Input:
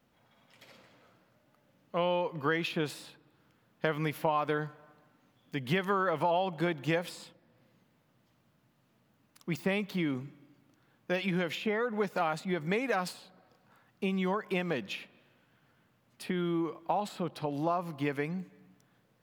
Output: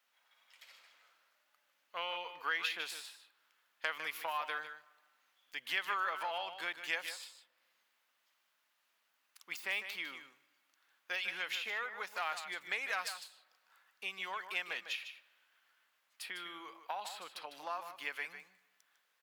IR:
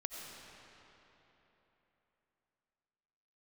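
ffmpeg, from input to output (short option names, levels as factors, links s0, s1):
-af "aeval=exprs='0.251*(cos(1*acos(clip(val(0)/0.251,-1,1)))-cos(1*PI/2))+0.0251*(cos(4*acos(clip(val(0)/0.251,-1,1)))-cos(4*PI/2))+0.01*(cos(6*acos(clip(val(0)/0.251,-1,1)))-cos(6*PI/2))':c=same,highpass=1400,aecho=1:1:152:0.316"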